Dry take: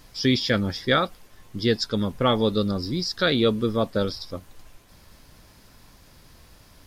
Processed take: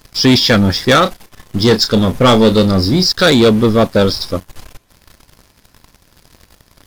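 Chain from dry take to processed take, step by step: waveshaping leveller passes 3; 1.02–3.10 s: doubling 32 ms -10 dB; trim +4 dB

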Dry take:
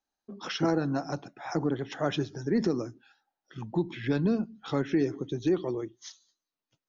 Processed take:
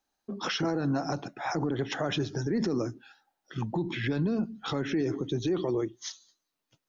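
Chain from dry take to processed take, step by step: peak limiter -27.5 dBFS, peak gain reduction 11 dB; trim +6.5 dB

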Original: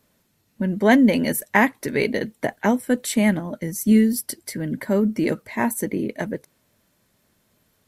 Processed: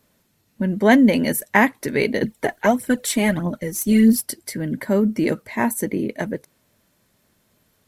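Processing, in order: 2.22–4.25 s: phaser 1.6 Hz, delay 3.2 ms, feedback 59%; trim +1.5 dB

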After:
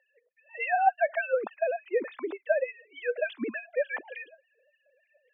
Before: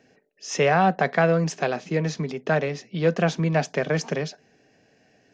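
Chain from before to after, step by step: formants replaced by sine waves; LFO high-pass sine 3.4 Hz 240–2600 Hz; trim -7 dB

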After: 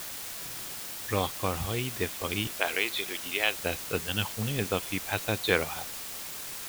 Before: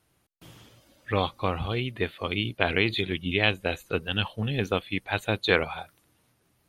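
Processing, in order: 2.47–3.59 s: high-pass 510 Hz 12 dB/octave; word length cut 6-bit, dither triangular; trim -3 dB

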